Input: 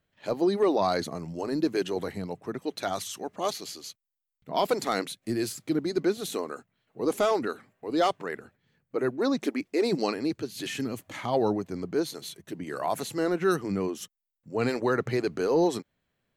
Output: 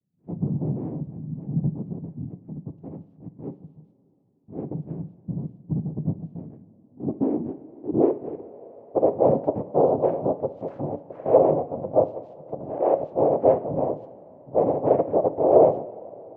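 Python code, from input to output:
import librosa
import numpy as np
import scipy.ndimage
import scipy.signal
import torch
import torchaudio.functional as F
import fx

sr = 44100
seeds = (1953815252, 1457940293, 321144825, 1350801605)

y = fx.peak_eq(x, sr, hz=620.0, db=9.0, octaves=0.73)
y = fx.notch(y, sr, hz=2300.0, q=12.0)
y = fx.noise_vocoder(y, sr, seeds[0], bands=4)
y = fx.rev_double_slope(y, sr, seeds[1], early_s=0.39, late_s=3.9, knee_db=-18, drr_db=9.0)
y = fx.filter_sweep_lowpass(y, sr, from_hz=180.0, to_hz=570.0, start_s=6.46, end_s=9.17, q=3.1)
y = y * librosa.db_to_amplitude(-2.0)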